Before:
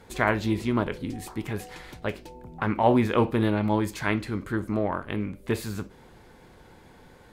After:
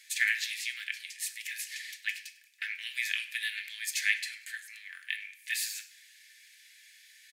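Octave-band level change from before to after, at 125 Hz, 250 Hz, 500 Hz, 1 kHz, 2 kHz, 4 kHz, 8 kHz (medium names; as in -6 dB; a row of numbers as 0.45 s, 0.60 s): under -40 dB, under -40 dB, under -40 dB, under -30 dB, +2.0 dB, +5.5 dB, +9.0 dB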